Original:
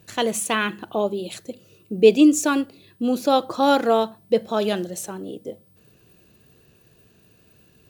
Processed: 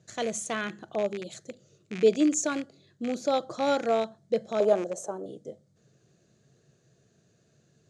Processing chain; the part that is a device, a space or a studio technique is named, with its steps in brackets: car door speaker with a rattle (rattle on loud lows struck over -32 dBFS, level -17 dBFS; cabinet simulation 100–8400 Hz, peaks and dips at 140 Hz +8 dB, 270 Hz -3 dB, 630 Hz +5 dB, 970 Hz -7 dB, 2.7 kHz -10 dB, 6.6 kHz +8 dB); 4.60–5.26 s: graphic EQ 125/500/1000/2000/4000 Hz -9/+9/+11/-8/-8 dB; trim -8 dB

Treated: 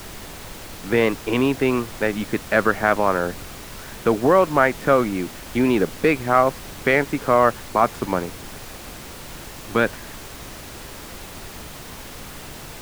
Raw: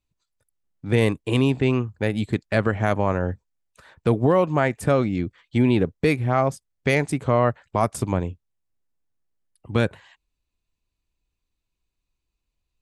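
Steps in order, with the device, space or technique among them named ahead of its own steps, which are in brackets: horn gramophone (band-pass 240–3100 Hz; peaking EQ 1.4 kHz +6.5 dB 0.77 oct; wow and flutter; pink noise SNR 14 dB); trim +3 dB

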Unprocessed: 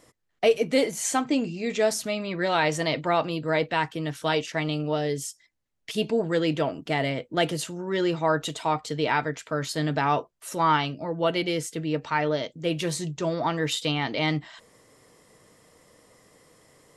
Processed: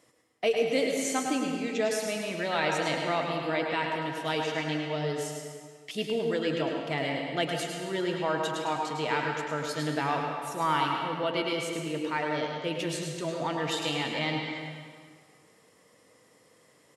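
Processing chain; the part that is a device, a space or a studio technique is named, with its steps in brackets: PA in a hall (high-pass 110 Hz; peaking EQ 2.6 kHz +3 dB 0.87 oct; delay 105 ms -8 dB; reverberation RT60 1.9 s, pre-delay 93 ms, DRR 2.5 dB); trim -6.5 dB

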